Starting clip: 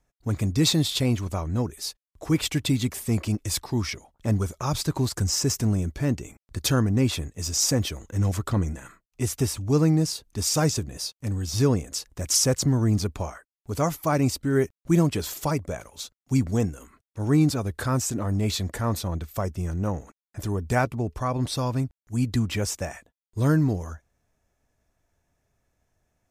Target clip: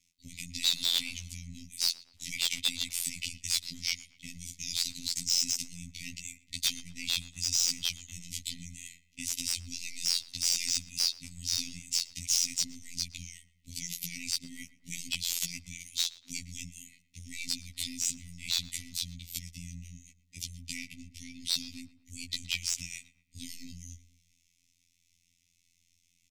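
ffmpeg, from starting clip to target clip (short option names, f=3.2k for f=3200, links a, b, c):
-filter_complex "[0:a]aeval=exprs='if(lt(val(0),0),0.708*val(0),val(0))':c=same,afftfilt=real='re*(1-between(b*sr/4096,270,1900))':imag='im*(1-between(b*sr/4096,270,1900))':win_size=4096:overlap=0.75,aemphasis=mode=reproduction:type=75kf,afftfilt=real='re*lt(hypot(re,im),0.447)':imag='im*lt(hypot(re,im),0.447)':win_size=1024:overlap=0.75,equalizer=f=65:w=2:g=-7,acompressor=threshold=-42dB:ratio=6,afftfilt=real='hypot(re,im)*cos(PI*b)':imag='0':win_size=2048:overlap=0.75,aexciter=amount=14.8:drive=4.1:freq=2.3k,volume=15dB,asoftclip=hard,volume=-15dB,asplit=2[a][b];[b]adelay=118,lowpass=f=2.2k:p=1,volume=-16dB,asplit=2[c][d];[d]adelay=118,lowpass=f=2.2k:p=1,volume=0.5,asplit=2[e][f];[f]adelay=118,lowpass=f=2.2k:p=1,volume=0.5,asplit=2[g][h];[h]adelay=118,lowpass=f=2.2k:p=1,volume=0.5[i];[a][c][e][g][i]amix=inputs=5:normalize=0"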